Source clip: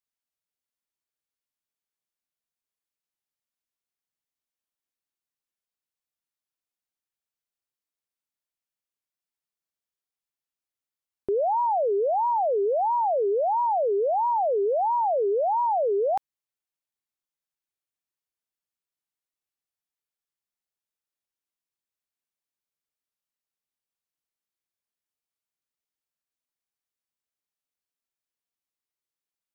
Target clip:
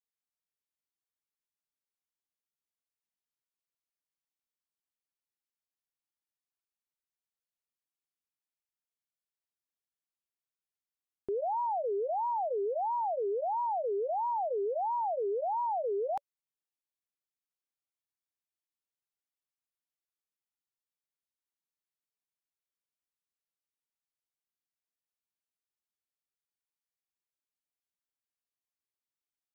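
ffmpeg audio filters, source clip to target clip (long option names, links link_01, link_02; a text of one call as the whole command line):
ffmpeg -i in.wav -af "bandreject=frequency=570:width=12,volume=-8dB" out.wav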